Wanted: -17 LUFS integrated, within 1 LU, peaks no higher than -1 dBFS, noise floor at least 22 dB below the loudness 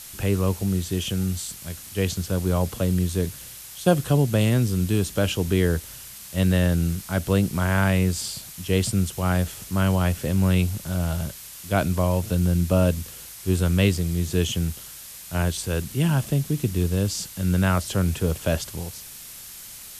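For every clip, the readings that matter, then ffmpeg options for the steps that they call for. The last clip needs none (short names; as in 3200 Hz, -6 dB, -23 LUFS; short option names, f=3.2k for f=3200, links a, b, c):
noise floor -41 dBFS; noise floor target -46 dBFS; loudness -24.0 LUFS; peak -4.5 dBFS; loudness target -17.0 LUFS
-> -af "afftdn=nr=6:nf=-41"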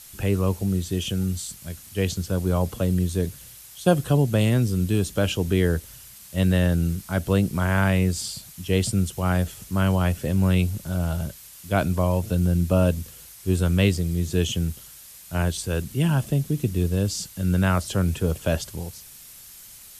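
noise floor -45 dBFS; noise floor target -46 dBFS
-> -af "afftdn=nr=6:nf=-45"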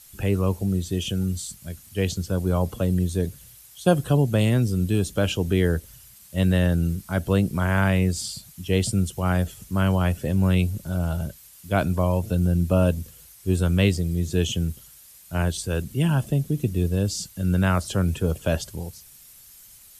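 noise floor -49 dBFS; loudness -24.0 LUFS; peak -4.5 dBFS; loudness target -17.0 LUFS
-> -af "volume=7dB,alimiter=limit=-1dB:level=0:latency=1"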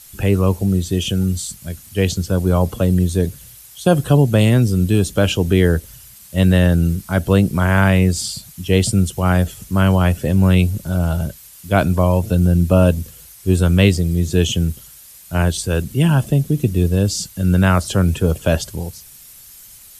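loudness -17.0 LUFS; peak -1.0 dBFS; noise floor -42 dBFS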